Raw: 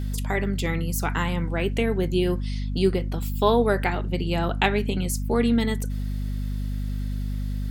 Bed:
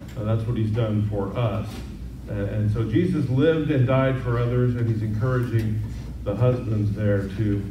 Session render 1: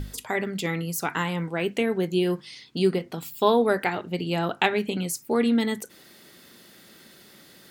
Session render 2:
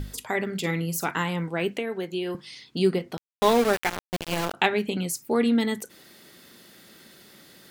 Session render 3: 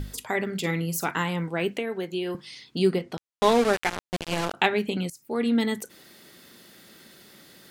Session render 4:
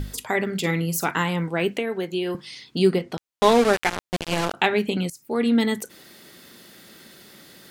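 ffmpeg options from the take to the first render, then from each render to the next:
ffmpeg -i in.wav -af "bandreject=frequency=50:width_type=h:width=6,bandreject=frequency=100:width_type=h:width=6,bandreject=frequency=150:width_type=h:width=6,bandreject=frequency=200:width_type=h:width=6,bandreject=frequency=250:width_type=h:width=6" out.wav
ffmpeg -i in.wav -filter_complex "[0:a]asettb=1/sr,asplit=3[link_01][link_02][link_03];[link_01]atrim=end=0.454[link_04];[link_02]atrim=start=0.45:end=1.11,asetpts=PTS-STARTPTS,afade=type=in:duration=0.004:curve=qsin,afade=type=out:start_time=0.656:duration=0.004:curve=qsin,asplit=2[link_05][link_06];[link_06]adelay=48,volume=-11.5dB[link_07];[link_05][link_07]amix=inputs=2:normalize=0,atrim=end_sample=29106[link_08];[link_03]atrim=start=1.106[link_09];[link_04][link_08]acrossfade=duration=0.004:curve1=hsin:curve2=qsin[link_10];[link_10][link_09]acrossfade=duration=0.004:curve1=qsin:curve2=hsin,asettb=1/sr,asplit=3[link_11][link_12][link_13];[link_11]atrim=end=1.774[link_14];[link_12]atrim=start=1.77:end=2.35,asetpts=PTS-STARTPTS,afade=type=in:duration=0.004:curve=qsin,afade=type=out:start_time=0.576:duration=0.004:curve=qsin,acrossover=split=310|1200|4000[link_15][link_16][link_17][link_18];[link_15]acompressor=threshold=-43dB:ratio=3[link_19];[link_16]acompressor=threshold=-30dB:ratio=3[link_20];[link_17]acompressor=threshold=-36dB:ratio=3[link_21];[link_18]acompressor=threshold=-55dB:ratio=3[link_22];[link_19][link_20][link_21][link_22]amix=inputs=4:normalize=0[link_23];[link_13]atrim=start=2.346[link_24];[link_14][link_23]acrossfade=duration=0.004:curve1=hsin:curve2=qsin[link_25];[link_25][link_24]acrossfade=duration=0.004:curve1=qsin:curve2=hsin,asettb=1/sr,asplit=3[link_26][link_27][link_28];[link_26]atrim=end=3.174[link_29];[link_27]atrim=start=3.17:end=4.54,asetpts=PTS-STARTPTS,afade=type=in:duration=0.004:curve=qsin,afade=type=out:start_time=1.366:duration=0.004:curve=qsin,aeval=exprs='val(0)*gte(abs(val(0)),0.0668)':channel_layout=same[link_30];[link_28]atrim=start=4.536[link_31];[link_29][link_30]acrossfade=duration=0.004:curve1=hsin:curve2=qsin[link_32];[link_32][link_31]acrossfade=duration=0.004:curve1=qsin:curve2=hsin" out.wav
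ffmpeg -i in.wav -filter_complex "[0:a]asettb=1/sr,asplit=3[link_01][link_02][link_03];[link_01]atrim=end=3.014[link_04];[link_02]atrim=start=3.01:end=4.56,asetpts=PTS-STARTPTS,afade=type=in:duration=0.004:curve=qsin,afade=type=out:start_time=1.546:duration=0.004:curve=qsin,lowpass=10000[link_05];[link_03]atrim=start=4.556[link_06];[link_04][link_05]acrossfade=duration=0.004:curve1=hsin:curve2=qsin[link_07];[link_07][link_06]acrossfade=duration=0.004:curve1=qsin:curve2=hsin,asplit=2[link_08][link_09];[link_08]atrim=end=5.1,asetpts=PTS-STARTPTS,afade=type=out:start_time=5.096:duration=0.004:curve=hsin:silence=0.105925[link_10];[link_09]atrim=start=5.1,asetpts=PTS-STARTPTS,afade=type=in:duration=0.5:silence=0.105925[link_11];[link_10][link_11]concat=n=2:v=0:a=1" out.wav
ffmpeg -i in.wav -af "volume=3.5dB,alimiter=limit=-3dB:level=0:latency=1" out.wav

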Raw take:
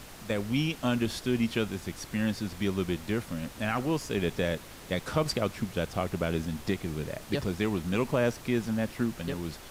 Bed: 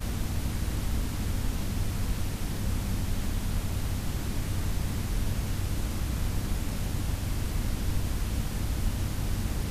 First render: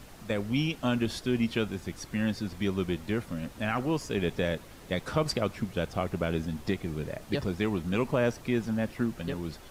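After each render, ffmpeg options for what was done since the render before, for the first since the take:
ffmpeg -i in.wav -af "afftdn=noise_reduction=6:noise_floor=-47" out.wav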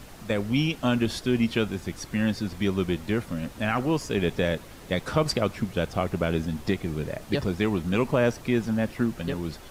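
ffmpeg -i in.wav -af "volume=4dB" out.wav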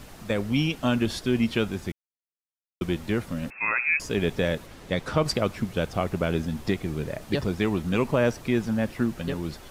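ffmpeg -i in.wav -filter_complex "[0:a]asettb=1/sr,asplit=3[link_01][link_02][link_03];[link_01]atrim=end=3.504[link_04];[link_02]atrim=start=3.5:end=4,asetpts=PTS-STARTPTS,afade=type=in:duration=0.004:curve=qsin,afade=type=out:start_time=0.496:duration=0.004:curve=qsin,lowpass=frequency=2300:width_type=q:width=0.5098,lowpass=frequency=2300:width_type=q:width=0.6013,lowpass=frequency=2300:width_type=q:width=0.9,lowpass=frequency=2300:width_type=q:width=2.563,afreqshift=-2700[link_05];[link_03]atrim=start=3.996[link_06];[link_04][link_05]acrossfade=duration=0.004:curve1=hsin:curve2=qsin[link_07];[link_07][link_06]acrossfade=duration=0.004:curve1=qsin:curve2=hsin,asettb=1/sr,asplit=3[link_08][link_09][link_10];[link_08]atrim=end=4.664[link_11];[link_09]atrim=start=4.66:end=5.25,asetpts=PTS-STARTPTS,afade=type=in:duration=0.004:curve=qsin,afade=type=out:start_time=0.586:duration=0.004:curve=qsin,highshelf=frequency=10000:gain=-9[link_12];[link_10]atrim=start=5.246[link_13];[link_11][link_12]acrossfade=duration=0.004:curve1=hsin:curve2=qsin[link_14];[link_14][link_13]acrossfade=duration=0.004:curve1=qsin:curve2=hsin,asplit=3[link_15][link_16][link_17];[link_15]atrim=end=1.92,asetpts=PTS-STARTPTS,afade=type=out:start_time=1.916:duration=0.004:curve=hsin[link_18];[link_16]atrim=start=1.92:end=2.81,asetpts=PTS-STARTPTS,volume=0[link_19];[link_17]atrim=start=2.81,asetpts=PTS-STARTPTS,afade=type=in:duration=0.004:curve=hsin[link_20];[link_18][link_19][link_20]concat=n=3:v=0:a=1" out.wav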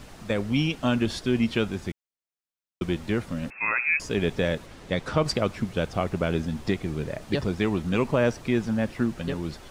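ffmpeg -i in.wav -af "equalizer=frequency=13000:width_type=o:width=0.47:gain=-10" out.wav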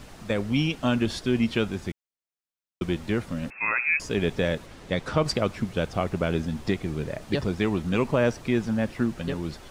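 ffmpeg -i in.wav -af anull out.wav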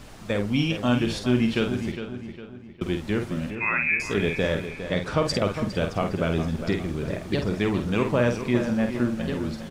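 ffmpeg -i in.wav -filter_complex "[0:a]asplit=2[link_01][link_02];[link_02]adelay=49,volume=-6.5dB[link_03];[link_01][link_03]amix=inputs=2:normalize=0,asplit=2[link_04][link_05];[link_05]adelay=407,lowpass=frequency=3600:poles=1,volume=-9.5dB,asplit=2[link_06][link_07];[link_07]adelay=407,lowpass=frequency=3600:poles=1,volume=0.45,asplit=2[link_08][link_09];[link_09]adelay=407,lowpass=frequency=3600:poles=1,volume=0.45,asplit=2[link_10][link_11];[link_11]adelay=407,lowpass=frequency=3600:poles=1,volume=0.45,asplit=2[link_12][link_13];[link_13]adelay=407,lowpass=frequency=3600:poles=1,volume=0.45[link_14];[link_06][link_08][link_10][link_12][link_14]amix=inputs=5:normalize=0[link_15];[link_04][link_15]amix=inputs=2:normalize=0" out.wav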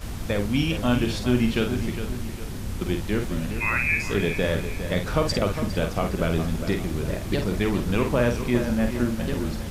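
ffmpeg -i in.wav -i bed.wav -filter_complex "[1:a]volume=-2dB[link_01];[0:a][link_01]amix=inputs=2:normalize=0" out.wav

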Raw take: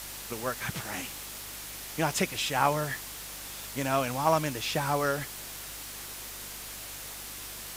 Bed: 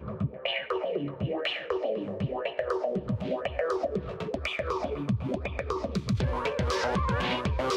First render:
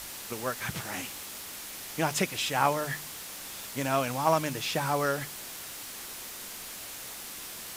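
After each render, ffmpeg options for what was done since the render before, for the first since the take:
ffmpeg -i in.wav -af "bandreject=frequency=50:width_type=h:width=4,bandreject=frequency=100:width_type=h:width=4,bandreject=frequency=150:width_type=h:width=4" out.wav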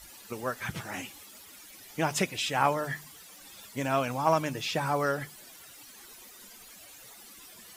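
ffmpeg -i in.wav -af "afftdn=noise_reduction=14:noise_floor=-42" out.wav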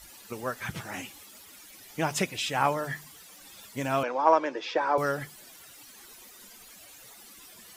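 ffmpeg -i in.wav -filter_complex "[0:a]asettb=1/sr,asplit=3[link_01][link_02][link_03];[link_01]atrim=end=4.034[link_04];[link_02]atrim=start=4.03:end=4.98,asetpts=PTS-STARTPTS,afade=type=in:duration=0.004:curve=qsin,afade=type=out:start_time=0.946:duration=0.004:curve=qsin,highpass=frequency=300:width=0.5412,highpass=frequency=300:width=1.3066,equalizer=frequency=350:width_type=q:width=4:gain=6,equalizer=frequency=520:width_type=q:width=4:gain=8,equalizer=frequency=960:width_type=q:width=4:gain=6,equalizer=frequency=1600:width_type=q:width=4:gain=4,equalizer=frequency=2800:width_type=q:width=4:gain=-5,equalizer=frequency=4100:width_type=q:width=4:gain=-5,lowpass=frequency=4900:width=0.5412,lowpass=frequency=4900:width=1.3066[link_05];[link_03]atrim=start=4.976[link_06];[link_04][link_05]acrossfade=duration=0.004:curve1=hsin:curve2=qsin[link_07];[link_07][link_06]acrossfade=duration=0.004:curve1=qsin:curve2=hsin" out.wav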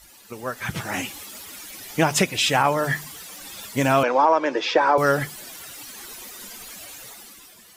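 ffmpeg -i in.wav -af "alimiter=limit=-17.5dB:level=0:latency=1:release=227,dynaudnorm=framelen=130:gausssize=11:maxgain=11dB" out.wav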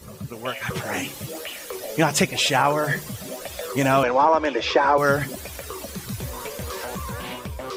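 ffmpeg -i in.wav -i bed.wav -filter_complex "[1:a]volume=-4.5dB[link_01];[0:a][link_01]amix=inputs=2:normalize=0" out.wav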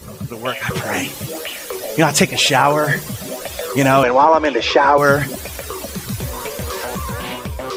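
ffmpeg -i in.wav -af "volume=6.5dB,alimiter=limit=-1dB:level=0:latency=1" out.wav

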